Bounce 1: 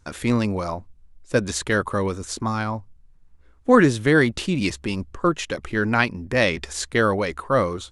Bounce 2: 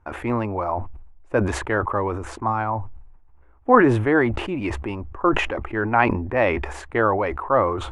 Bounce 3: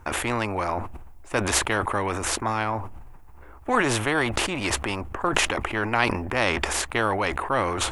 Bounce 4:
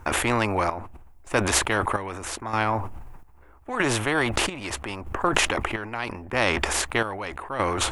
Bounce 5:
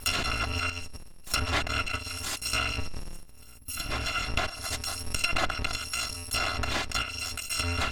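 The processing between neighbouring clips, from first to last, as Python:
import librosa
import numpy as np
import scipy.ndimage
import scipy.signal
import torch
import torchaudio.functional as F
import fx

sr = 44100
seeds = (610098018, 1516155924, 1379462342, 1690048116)

y1 = fx.curve_eq(x, sr, hz=(110.0, 160.0, 340.0, 490.0, 820.0, 1500.0, 2600.0, 4000.0, 5600.0, 8400.0), db=(0, -10, 3, 0, 10, 0, -4, -21, -23, -21))
y1 = fx.sustainer(y1, sr, db_per_s=55.0)
y1 = y1 * librosa.db_to_amplitude(-2.0)
y2 = fx.high_shelf(y1, sr, hz=4600.0, db=12.0)
y2 = fx.spectral_comp(y2, sr, ratio=2.0)
y2 = y2 * librosa.db_to_amplitude(-1.0)
y3 = fx.rider(y2, sr, range_db=10, speed_s=0.5)
y3 = fx.chopper(y3, sr, hz=0.79, depth_pct=65, duty_pct=55)
y3 = y3 * librosa.db_to_amplitude(1.5)
y4 = fx.bit_reversed(y3, sr, seeds[0], block=256)
y4 = fx.spec_box(y4, sr, start_s=3.58, length_s=0.33, low_hz=330.0, high_hz=9900.0, gain_db=-9)
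y4 = fx.env_lowpass_down(y4, sr, base_hz=2400.0, full_db=-20.0)
y4 = y4 * librosa.db_to_amplitude(4.0)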